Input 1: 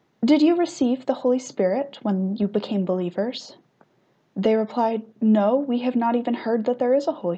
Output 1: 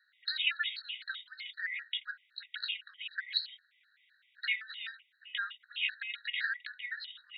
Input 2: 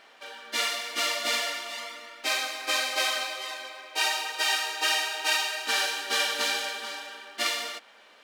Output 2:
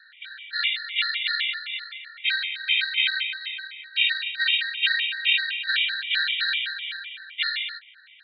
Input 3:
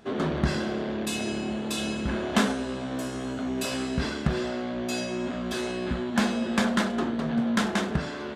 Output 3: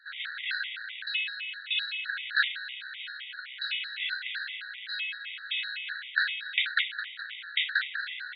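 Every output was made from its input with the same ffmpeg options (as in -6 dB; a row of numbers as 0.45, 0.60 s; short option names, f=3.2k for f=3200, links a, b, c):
-af "asuperpass=centerf=2500:order=20:qfactor=0.9,afftfilt=real='re*gt(sin(2*PI*3.9*pts/sr)*(1-2*mod(floor(b*sr/1024/1900),2)),0)':imag='im*gt(sin(2*PI*3.9*pts/sr)*(1-2*mod(floor(b*sr/1024/1900),2)),0)':win_size=1024:overlap=0.75,volume=8.5dB"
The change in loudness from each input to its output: -14.0, +3.5, -3.0 LU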